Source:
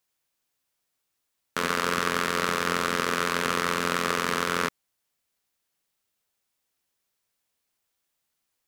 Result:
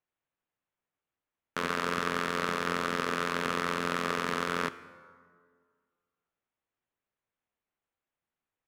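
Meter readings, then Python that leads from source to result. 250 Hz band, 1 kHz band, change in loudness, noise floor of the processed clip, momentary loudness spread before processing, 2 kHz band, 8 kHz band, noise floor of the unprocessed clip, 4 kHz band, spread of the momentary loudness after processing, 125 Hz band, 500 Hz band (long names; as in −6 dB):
−3.0 dB, −4.5 dB, −5.0 dB, below −85 dBFS, 3 LU, −5.0 dB, −10.0 dB, −80 dBFS, −7.0 dB, 4 LU, −3.5 dB, −4.0 dB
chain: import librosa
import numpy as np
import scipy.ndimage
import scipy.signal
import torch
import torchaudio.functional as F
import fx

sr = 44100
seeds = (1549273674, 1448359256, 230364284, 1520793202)

y = fx.wiener(x, sr, points=9)
y = fx.high_shelf(y, sr, hz=6300.0, db=-9.0)
y = fx.rev_plate(y, sr, seeds[0], rt60_s=1.9, hf_ratio=0.55, predelay_ms=0, drr_db=14.0)
y = y * librosa.db_to_amplitude(-4.0)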